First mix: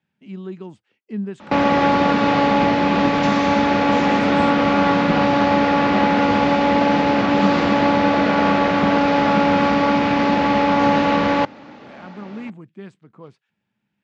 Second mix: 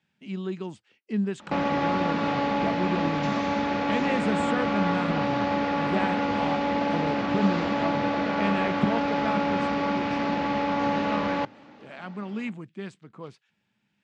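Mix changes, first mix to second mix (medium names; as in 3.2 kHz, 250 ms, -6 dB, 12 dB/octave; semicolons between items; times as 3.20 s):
speech: add treble shelf 2.3 kHz +8.5 dB; background -9.5 dB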